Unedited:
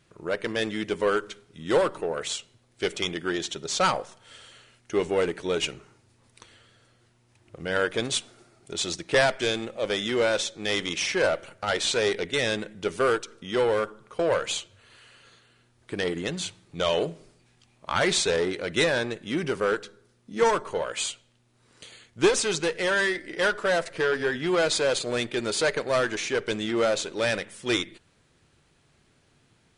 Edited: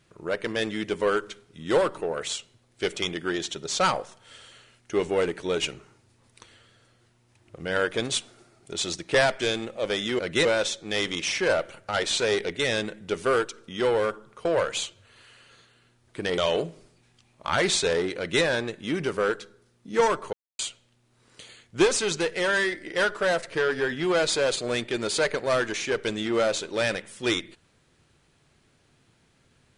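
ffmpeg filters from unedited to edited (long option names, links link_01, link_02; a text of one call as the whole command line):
ffmpeg -i in.wav -filter_complex "[0:a]asplit=6[link_01][link_02][link_03][link_04][link_05][link_06];[link_01]atrim=end=10.192[link_07];[link_02]atrim=start=18.598:end=18.862[link_08];[link_03]atrim=start=10.188:end=16.122[link_09];[link_04]atrim=start=16.808:end=20.76,asetpts=PTS-STARTPTS,afade=type=out:start_time=3.948:duration=0.004:curve=hsin[link_10];[link_05]atrim=start=20.76:end=21.02,asetpts=PTS-STARTPTS,volume=0[link_11];[link_06]atrim=start=21.02,asetpts=PTS-STARTPTS,afade=type=in:duration=0.004:curve=hsin[link_12];[link_07][link_08]acrossfade=duration=0.004:curve1=hsin:curve2=hsin[link_13];[link_13][link_09]acrossfade=duration=0.004:curve1=hsin:curve2=hsin[link_14];[link_10][link_11][link_12]concat=n=3:v=0:a=1[link_15];[link_14][link_15]acrossfade=duration=0.004:curve1=hsin:curve2=hsin" out.wav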